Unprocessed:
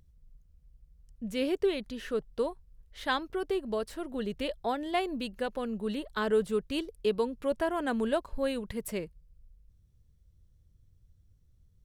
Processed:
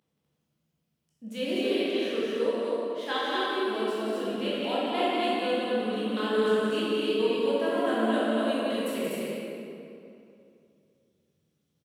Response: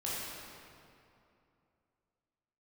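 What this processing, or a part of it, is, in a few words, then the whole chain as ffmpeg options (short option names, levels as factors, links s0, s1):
stadium PA: -filter_complex "[0:a]highpass=f=180:w=0.5412,highpass=f=180:w=1.3066,equalizer=f=3100:t=o:w=0.8:g=5.5,aecho=1:1:177.8|247.8:0.562|0.794[s0];[1:a]atrim=start_sample=2205[s1];[s0][s1]afir=irnorm=-1:irlink=0,volume=0.668"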